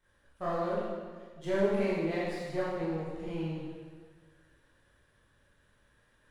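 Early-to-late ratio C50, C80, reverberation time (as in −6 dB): −2.0 dB, 0.5 dB, 1.6 s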